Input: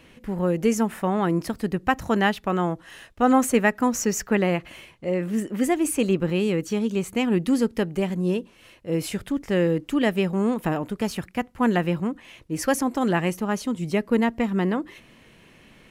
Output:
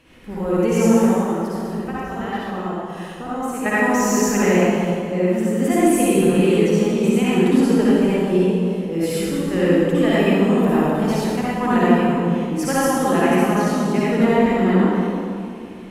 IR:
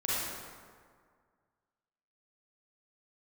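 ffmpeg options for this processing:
-filter_complex "[0:a]asettb=1/sr,asplit=3[s0][s1][s2];[s0]atrim=end=1.054[s3];[s1]atrim=start=1.05:end=3.66,asetpts=PTS-STARTPTS,afade=t=in:d=0.004:c=qsin,afade=t=out:st=2.606:d=0.004:c=qsin,acompressor=threshold=0.02:ratio=2.5[s4];[s2]atrim=start=3.656[s5];[s3][s4]acrossfade=d=0.004:c1=hsin:c2=qsin[s6];[s6][s5]acrossfade=d=0.004:c1=qsin:c2=hsin[s7];[1:a]atrim=start_sample=2205,asetrate=31311,aresample=44100[s8];[s7][s8]afir=irnorm=-1:irlink=0,volume=0.631"

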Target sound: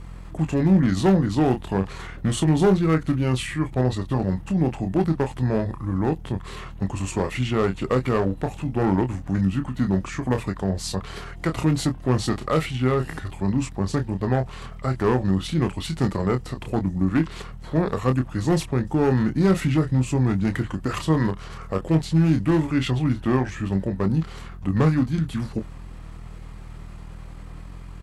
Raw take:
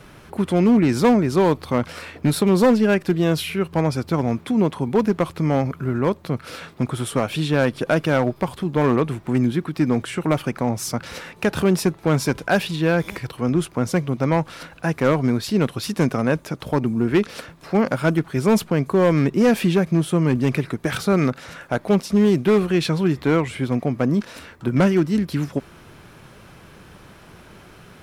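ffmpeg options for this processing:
-filter_complex "[0:a]asplit=2[s0][s1];[s1]adelay=25,volume=0.473[s2];[s0][s2]amix=inputs=2:normalize=0,aeval=exprs='val(0)+0.0224*(sin(2*PI*50*n/s)+sin(2*PI*2*50*n/s)/2+sin(2*PI*3*50*n/s)/3+sin(2*PI*4*50*n/s)/4+sin(2*PI*5*50*n/s)/5)':c=same,asetrate=35002,aresample=44100,atempo=1.25992,volume=0.668"

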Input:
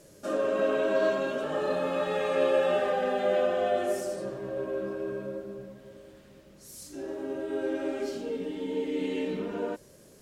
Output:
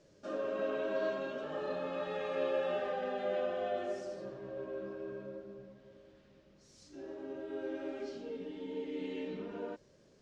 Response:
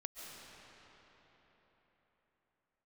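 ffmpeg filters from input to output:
-af "lowpass=f=5900:w=0.5412,lowpass=f=5900:w=1.3066,volume=0.355"

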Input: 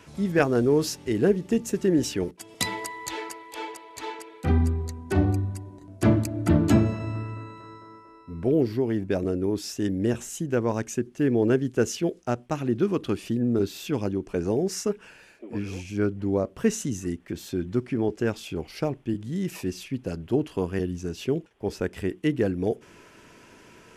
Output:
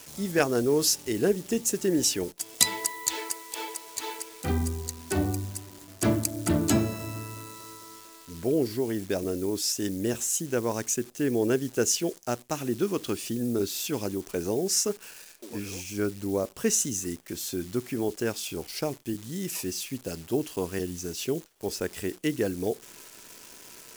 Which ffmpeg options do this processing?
-af "acrusher=bits=9:dc=4:mix=0:aa=0.000001,bass=f=250:g=-5,treble=f=4000:g=13,volume=0.794"

